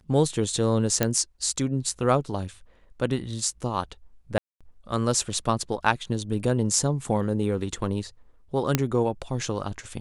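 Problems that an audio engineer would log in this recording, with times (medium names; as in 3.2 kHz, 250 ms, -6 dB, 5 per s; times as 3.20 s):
1.03 s: pop -6 dBFS
4.38–4.61 s: dropout 226 ms
8.75 s: pop -5 dBFS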